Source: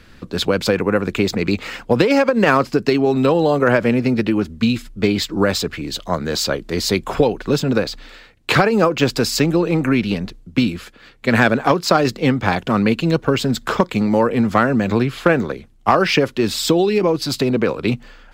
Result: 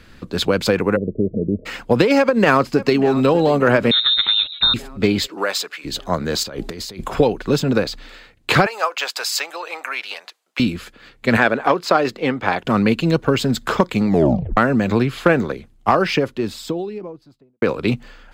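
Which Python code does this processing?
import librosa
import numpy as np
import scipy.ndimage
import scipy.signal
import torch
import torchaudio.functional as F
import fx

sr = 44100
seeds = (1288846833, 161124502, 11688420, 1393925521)

y = fx.cheby_ripple(x, sr, hz=640.0, ripple_db=3, at=(0.95, 1.65), fade=0.02)
y = fx.echo_throw(y, sr, start_s=2.17, length_s=1.12, ms=590, feedback_pct=60, wet_db=-16.0)
y = fx.freq_invert(y, sr, carrier_hz=3900, at=(3.91, 4.74))
y = fx.highpass(y, sr, hz=fx.line((5.26, 460.0), (5.84, 1100.0)), slope=12, at=(5.26, 5.84), fade=0.02)
y = fx.over_compress(y, sr, threshold_db=-30.0, ratio=-1.0, at=(6.43, 7.13))
y = fx.highpass(y, sr, hz=710.0, slope=24, at=(8.66, 10.6))
y = fx.bass_treble(y, sr, bass_db=-11, treble_db=-8, at=(11.37, 12.65))
y = fx.studio_fade_out(y, sr, start_s=15.53, length_s=2.09)
y = fx.edit(y, sr, fx.tape_stop(start_s=14.08, length_s=0.49), tone=tone)
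y = fx.notch(y, sr, hz=5600.0, q=23.0)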